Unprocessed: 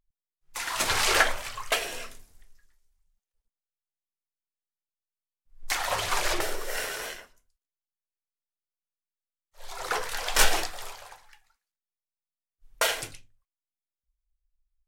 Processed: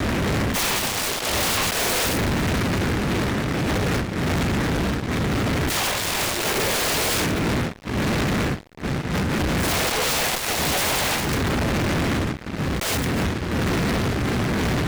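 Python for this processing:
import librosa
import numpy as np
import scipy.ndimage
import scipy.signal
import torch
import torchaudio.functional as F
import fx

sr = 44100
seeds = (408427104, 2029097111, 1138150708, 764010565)

y = fx.rattle_buzz(x, sr, strikes_db=-39.0, level_db=-10.0)
y = fx.dmg_wind(y, sr, seeds[0], corner_hz=270.0, level_db=-41.0)
y = scipy.signal.sosfilt(scipy.signal.butter(4, 53.0, 'highpass', fs=sr, output='sos'), y)
y = fx.high_shelf(y, sr, hz=8800.0, db=-5.5)
y = fx.over_compress(y, sr, threshold_db=-40.0, ratio=-1.0)
y = fx.fuzz(y, sr, gain_db=52.0, gate_db=-59.0)
y = fx.noise_mod_delay(y, sr, seeds[1], noise_hz=1300.0, depth_ms=0.22)
y = y * 10.0 ** (-7.5 / 20.0)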